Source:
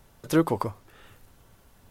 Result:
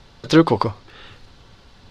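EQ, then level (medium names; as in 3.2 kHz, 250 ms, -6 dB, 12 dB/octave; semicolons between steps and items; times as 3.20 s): resonant low-pass 4.3 kHz, resonance Q 2.7; band-stop 640 Hz, Q 15; +8.5 dB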